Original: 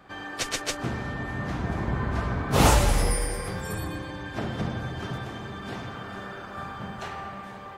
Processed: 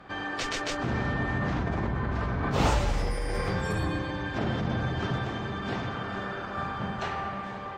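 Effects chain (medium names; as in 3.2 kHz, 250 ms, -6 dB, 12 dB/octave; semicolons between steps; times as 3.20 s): in parallel at +2 dB: compressor with a negative ratio -31 dBFS, ratio -0.5; on the sum: boxcar filter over 4 samples; trim -5.5 dB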